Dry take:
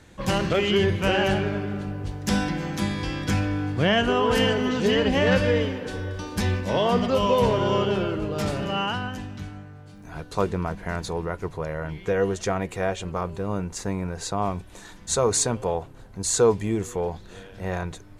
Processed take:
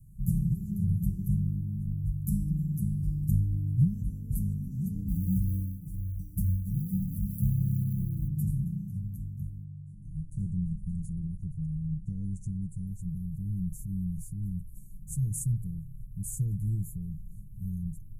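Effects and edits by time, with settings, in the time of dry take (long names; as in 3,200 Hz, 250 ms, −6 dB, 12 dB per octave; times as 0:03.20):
0:05.08–0:08.28: floating-point word with a short mantissa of 4 bits
0:09.64–0:12.87: Butterworth low-pass 9,800 Hz 48 dB per octave
0:13.46–0:14.46: transient designer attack −8 dB, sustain +4 dB
whole clip: inverse Chebyshev band-stop filter 560–3,700 Hz, stop band 70 dB; comb filter 6.2 ms; level +3.5 dB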